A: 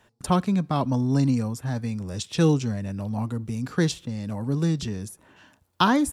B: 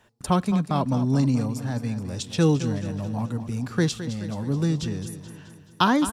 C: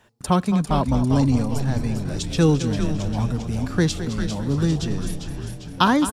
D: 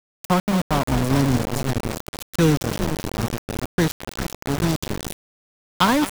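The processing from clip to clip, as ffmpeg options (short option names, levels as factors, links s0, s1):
-af "aecho=1:1:214|428|642|856|1070|1284:0.251|0.138|0.076|0.0418|0.023|0.0126"
-filter_complex "[0:a]asplit=8[s0][s1][s2][s3][s4][s5][s6][s7];[s1]adelay=399,afreqshift=-140,volume=0.447[s8];[s2]adelay=798,afreqshift=-280,volume=0.24[s9];[s3]adelay=1197,afreqshift=-420,volume=0.13[s10];[s4]adelay=1596,afreqshift=-560,volume=0.07[s11];[s5]adelay=1995,afreqshift=-700,volume=0.038[s12];[s6]adelay=2394,afreqshift=-840,volume=0.0204[s13];[s7]adelay=2793,afreqshift=-980,volume=0.0111[s14];[s0][s8][s9][s10][s11][s12][s13][s14]amix=inputs=8:normalize=0,volume=1.33"
-af "aeval=exprs='val(0)*gte(abs(val(0)),0.112)':c=same"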